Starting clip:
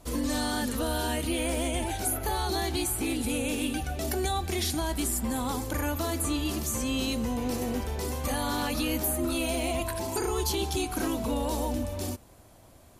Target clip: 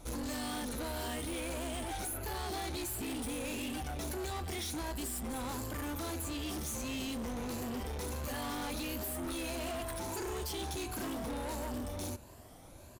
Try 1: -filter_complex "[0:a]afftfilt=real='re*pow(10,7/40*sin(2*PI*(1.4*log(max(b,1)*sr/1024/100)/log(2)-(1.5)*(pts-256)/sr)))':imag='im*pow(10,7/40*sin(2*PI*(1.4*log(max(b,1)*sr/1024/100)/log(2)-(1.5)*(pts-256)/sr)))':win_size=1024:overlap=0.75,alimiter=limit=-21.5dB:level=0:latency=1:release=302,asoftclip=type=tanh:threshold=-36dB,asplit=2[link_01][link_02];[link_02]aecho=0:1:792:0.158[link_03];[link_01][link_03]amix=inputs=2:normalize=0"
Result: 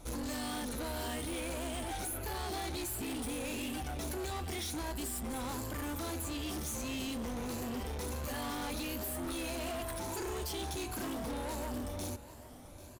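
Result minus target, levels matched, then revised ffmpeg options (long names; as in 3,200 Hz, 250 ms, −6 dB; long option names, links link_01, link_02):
echo-to-direct +9 dB
-filter_complex "[0:a]afftfilt=real='re*pow(10,7/40*sin(2*PI*(1.4*log(max(b,1)*sr/1024/100)/log(2)-(1.5)*(pts-256)/sr)))':imag='im*pow(10,7/40*sin(2*PI*(1.4*log(max(b,1)*sr/1024/100)/log(2)-(1.5)*(pts-256)/sr)))':win_size=1024:overlap=0.75,alimiter=limit=-21.5dB:level=0:latency=1:release=302,asoftclip=type=tanh:threshold=-36dB,asplit=2[link_01][link_02];[link_02]aecho=0:1:792:0.0562[link_03];[link_01][link_03]amix=inputs=2:normalize=0"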